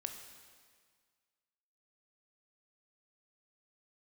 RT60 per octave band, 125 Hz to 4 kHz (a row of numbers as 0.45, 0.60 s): 1.7, 1.8, 1.7, 1.8, 1.7, 1.7 s